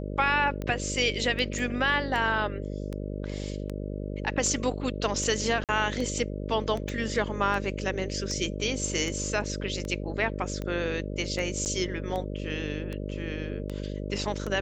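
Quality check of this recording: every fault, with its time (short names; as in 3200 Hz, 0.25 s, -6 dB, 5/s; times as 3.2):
buzz 50 Hz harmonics 12 -34 dBFS
tick 78 rpm -21 dBFS
1.59 gap 2.2 ms
5.64–5.69 gap 48 ms
6.89 pop
11.65–11.66 gap 9 ms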